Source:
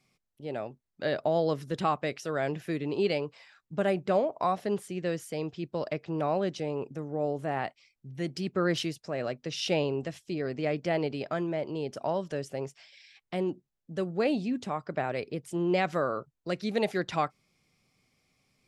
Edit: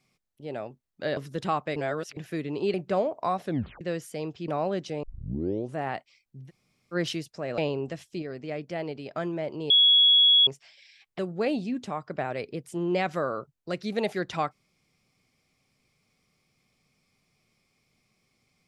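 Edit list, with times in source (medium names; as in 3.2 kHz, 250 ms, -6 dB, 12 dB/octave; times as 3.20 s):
1.17–1.53 s: delete
2.12–2.53 s: reverse
3.10–3.92 s: delete
4.63 s: tape stop 0.36 s
5.66–6.18 s: delete
6.73 s: tape start 0.72 s
8.18–8.64 s: room tone, crossfade 0.06 s
9.28–9.73 s: delete
10.37–11.30 s: gain -4.5 dB
11.85–12.62 s: bleep 3.35 kHz -15 dBFS
13.34–13.98 s: delete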